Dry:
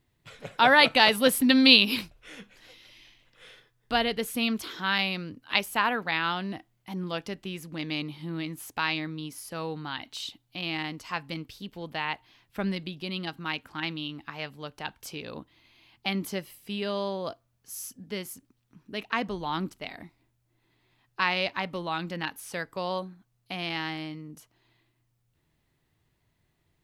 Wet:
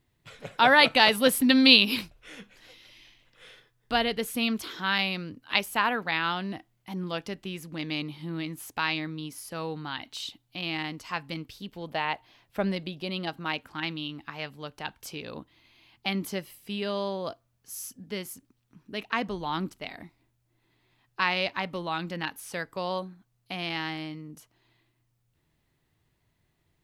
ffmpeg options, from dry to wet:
ffmpeg -i in.wav -filter_complex "[0:a]asettb=1/sr,asplit=3[link_01][link_02][link_03];[link_01]atrim=end=11.884[link_04];[link_02]atrim=start=11.88:end=13.65,asetpts=PTS-STARTPTS,afade=type=in:duration=0.004:curve=qsin,afade=type=out:start_time=1.766:duration=0.004:curve=qsin,equalizer=frequency=610:width=1.5:gain=7[link_05];[link_03]atrim=start=13.646[link_06];[link_04][link_05]acrossfade=duration=0.004:curve1=hsin:curve2=qsin[link_07];[link_07][link_06]acrossfade=duration=0.004:curve1=qsin:curve2=hsin" out.wav

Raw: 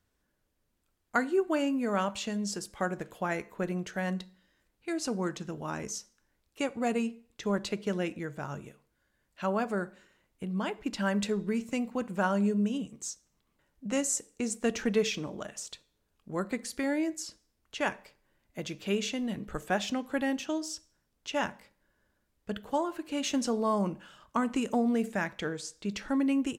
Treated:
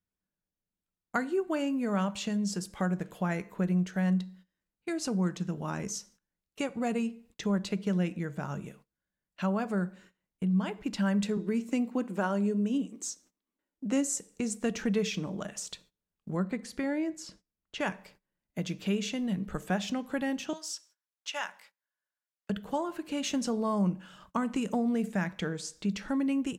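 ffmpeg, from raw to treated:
ffmpeg -i in.wav -filter_complex "[0:a]asettb=1/sr,asplit=3[link_01][link_02][link_03];[link_01]atrim=end=11.374[link_04];[link_02]atrim=start=11.37:end=14.18,asetpts=PTS-STARTPTS,afade=type=in:duration=0.004:curve=qsin,afade=type=out:start_time=2.806:duration=0.004:curve=qsin,lowshelf=frequency=200:width_type=q:width=3:gain=-10[link_05];[link_03]atrim=start=14.176[link_06];[link_04][link_05]acrossfade=duration=0.004:curve1=hsin:curve2=qsin[link_07];[link_07][link_06]acrossfade=duration=0.004:curve1=qsin:curve2=hsin,asettb=1/sr,asplit=3[link_08][link_09][link_10];[link_08]atrim=end=16.374[link_11];[link_09]atrim=start=16.37:end=17.8,asetpts=PTS-STARTPTS,afade=type=in:duration=0.004:curve=qsin,afade=type=out:start_time=1.426:duration=0.004:curve=qsin,highshelf=frequency=5000:gain=-11[link_12];[link_10]atrim=start=17.796[link_13];[link_11][link_12]acrossfade=duration=0.004:curve1=hsin:curve2=qsin[link_14];[link_14][link_13]acrossfade=duration=0.004:curve1=qsin:curve2=hsin,asettb=1/sr,asplit=3[link_15][link_16][link_17];[link_15]atrim=end=20.534[link_18];[link_16]atrim=start=20.53:end=22.5,asetpts=PTS-STARTPTS,afade=type=in:duration=0.004:curve=qsin,afade=type=out:start_time=1.966:duration=0.004:curve=qsin,highpass=970[link_19];[link_17]atrim=start=22.496[link_20];[link_18][link_19]acrossfade=duration=0.004:curve1=hsin:curve2=qsin[link_21];[link_21][link_20]acrossfade=duration=0.004:curve1=qsin:curve2=hsin,agate=range=-20dB:threshold=-59dB:ratio=16:detection=peak,equalizer=frequency=180:width=4.3:gain=12,acompressor=threshold=-41dB:ratio=1.5,volume=3.5dB" out.wav

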